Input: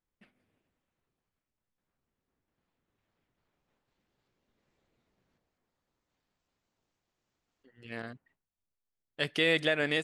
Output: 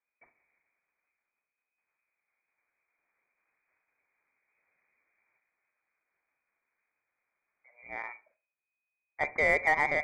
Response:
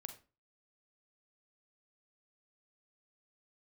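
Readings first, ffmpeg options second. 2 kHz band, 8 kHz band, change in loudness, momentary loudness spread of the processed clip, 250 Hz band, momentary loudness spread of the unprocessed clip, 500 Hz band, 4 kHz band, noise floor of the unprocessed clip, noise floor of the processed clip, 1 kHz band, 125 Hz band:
+3.5 dB, can't be measured, 0.0 dB, 18 LU, −10.0 dB, 18 LU, −1.0 dB, −18.5 dB, below −85 dBFS, below −85 dBFS, +14.0 dB, −7.5 dB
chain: -filter_complex "[0:a]lowpass=frequency=2100:width_type=q:width=0.5098,lowpass=frequency=2100:width_type=q:width=0.6013,lowpass=frequency=2100:width_type=q:width=0.9,lowpass=frequency=2100:width_type=q:width=2.563,afreqshift=-2500,asplit=2[link_01][link_02];[1:a]atrim=start_sample=2205,lowpass=2500[link_03];[link_02][link_03]afir=irnorm=-1:irlink=0,volume=2.5dB[link_04];[link_01][link_04]amix=inputs=2:normalize=0,aeval=exprs='0.211*(cos(1*acos(clip(val(0)/0.211,-1,1)))-cos(1*PI/2))+0.00596*(cos(7*acos(clip(val(0)/0.211,-1,1)))-cos(7*PI/2))':channel_layout=same"

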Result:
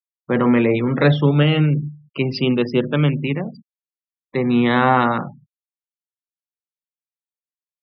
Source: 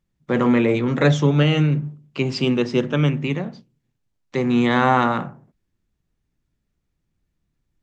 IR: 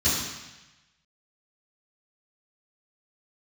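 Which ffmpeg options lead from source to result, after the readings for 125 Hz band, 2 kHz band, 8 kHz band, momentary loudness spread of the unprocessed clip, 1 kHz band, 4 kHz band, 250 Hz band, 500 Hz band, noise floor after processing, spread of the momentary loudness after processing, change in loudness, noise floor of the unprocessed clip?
+1.5 dB, +1.5 dB, can't be measured, 11 LU, +1.5 dB, +1.0 dB, +1.5 dB, +1.5 dB, below −85 dBFS, 11 LU, +1.5 dB, −76 dBFS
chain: -af "afftfilt=real='re*gte(hypot(re,im),0.0224)':imag='im*gte(hypot(re,im),0.0224)':win_size=1024:overlap=0.75,aresample=11025,aresample=44100,volume=1.5dB"

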